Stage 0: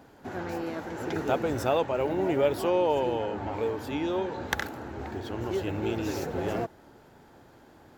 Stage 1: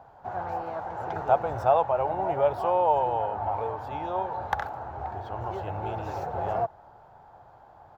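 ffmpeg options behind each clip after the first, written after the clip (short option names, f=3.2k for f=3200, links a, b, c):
-af "firequalizer=gain_entry='entry(120,0);entry(260,-15);entry(730,10);entry(1900,-8);entry(9700,-19);entry(14000,-15)':delay=0.05:min_phase=1"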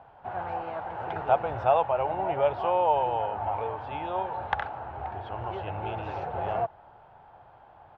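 -af "lowpass=f=2.9k:t=q:w=2.4,volume=-1.5dB"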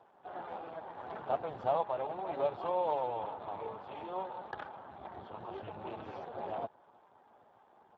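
-af "volume=-6.5dB" -ar 32000 -c:a libspeex -b:a 8k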